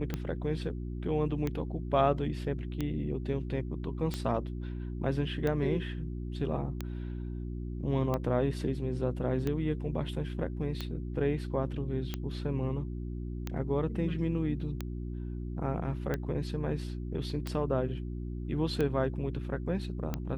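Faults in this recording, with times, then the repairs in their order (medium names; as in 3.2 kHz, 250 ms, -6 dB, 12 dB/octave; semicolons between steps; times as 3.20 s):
hum 60 Hz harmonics 6 -37 dBFS
tick 45 rpm -19 dBFS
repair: de-click; de-hum 60 Hz, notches 6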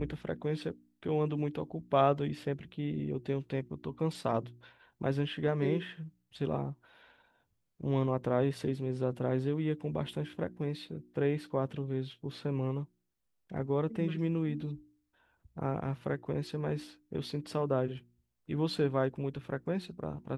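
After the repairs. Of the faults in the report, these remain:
nothing left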